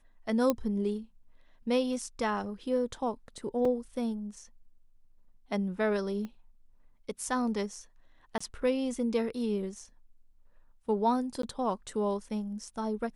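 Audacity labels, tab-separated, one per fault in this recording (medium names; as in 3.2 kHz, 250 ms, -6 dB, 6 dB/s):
0.500000	0.500000	pop -13 dBFS
3.650000	3.650000	dropout 3.4 ms
6.250000	6.250000	pop -28 dBFS
8.380000	8.400000	dropout 25 ms
11.420000	11.430000	dropout 13 ms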